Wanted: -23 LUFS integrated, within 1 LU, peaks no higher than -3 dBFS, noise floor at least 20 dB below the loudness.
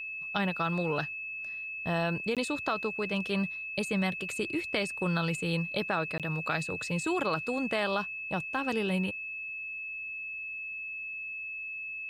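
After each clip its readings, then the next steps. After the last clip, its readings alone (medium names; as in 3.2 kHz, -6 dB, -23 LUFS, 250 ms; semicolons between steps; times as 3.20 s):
dropouts 2; longest dropout 17 ms; steady tone 2.6 kHz; tone level -36 dBFS; loudness -32.0 LUFS; peak level -15.0 dBFS; loudness target -23.0 LUFS
-> interpolate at 2.35/6.18 s, 17 ms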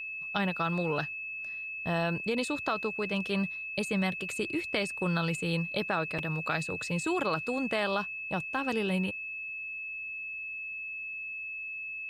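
dropouts 0; steady tone 2.6 kHz; tone level -36 dBFS
-> band-stop 2.6 kHz, Q 30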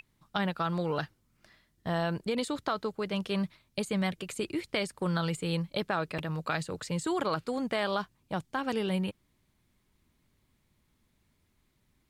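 steady tone not found; loudness -33.0 LUFS; peak level -15.5 dBFS; loudness target -23.0 LUFS
-> trim +10 dB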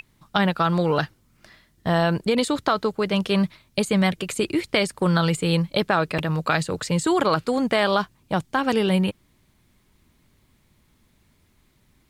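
loudness -23.0 LUFS; peak level -5.5 dBFS; noise floor -63 dBFS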